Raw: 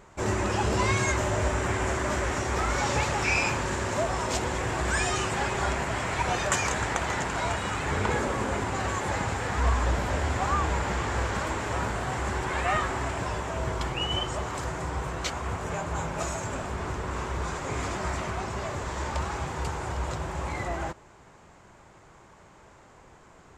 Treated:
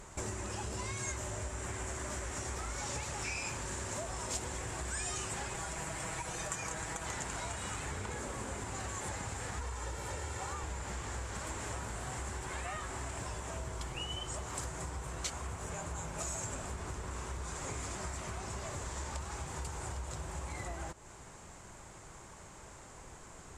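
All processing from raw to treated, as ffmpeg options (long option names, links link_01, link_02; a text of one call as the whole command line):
ffmpeg -i in.wav -filter_complex "[0:a]asettb=1/sr,asplit=3[link_01][link_02][link_03];[link_01]atrim=end=5.544[link_04];[link_02]atrim=start=5.54:end=7.06,asetpts=PTS-STARTPTS,afade=type=in:duration=0.004:curve=qsin,afade=type=out:start_time=1.516:duration=0.004:curve=qsin,acrossover=split=2200|6900[link_05][link_06][link_07];[link_05]acompressor=threshold=-29dB:ratio=4[link_08];[link_06]acompressor=threshold=-44dB:ratio=4[link_09];[link_07]acompressor=threshold=-45dB:ratio=4[link_10];[link_08][link_09][link_10]amix=inputs=3:normalize=0,aecho=1:1:6.2:0.54,atrim=end_sample=67032[link_11];[link_03]atrim=start=7.056[link_12];[link_04][link_11]acrossfade=duration=0.004:curve1=hsin:curve2=qsin[link_13];[link_13][link_12]acrossfade=duration=0.004:curve1=qsin:curve2=hsin,asettb=1/sr,asplit=3[link_14][link_15][link_16];[link_14]atrim=end=9.614[link_17];[link_15]atrim=start=9.61:end=10.64,asetpts=PTS-STARTPTS,afade=type=in:duration=0.004:curve=qsin,afade=type=out:start_time=1.026:duration=0.004:curve=qsin,highpass=91,aecho=1:1:2.2:0.51,atrim=end_sample=45423[link_18];[link_16]atrim=start=10.636[link_19];[link_17][link_18]acrossfade=duration=0.004:curve1=hsin:curve2=qsin[link_20];[link_20][link_19]acrossfade=duration=0.004:curve1=qsin:curve2=hsin,lowshelf=frequency=82:gain=7.5,acompressor=threshold=-38dB:ratio=6,equalizer=frequency=9300:width=0.73:gain=14.5,volume=-1dB" out.wav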